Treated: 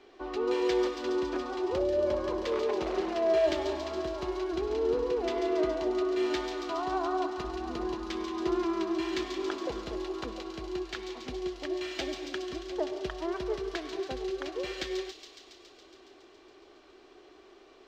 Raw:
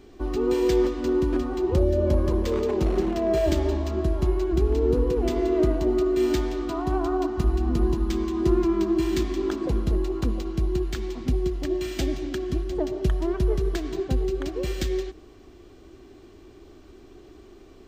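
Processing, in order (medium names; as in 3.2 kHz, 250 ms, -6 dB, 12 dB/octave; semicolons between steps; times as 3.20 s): three-band isolator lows -22 dB, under 400 Hz, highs -21 dB, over 5.4 kHz; feedback echo behind a high-pass 139 ms, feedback 76%, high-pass 4.1 kHz, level -3.5 dB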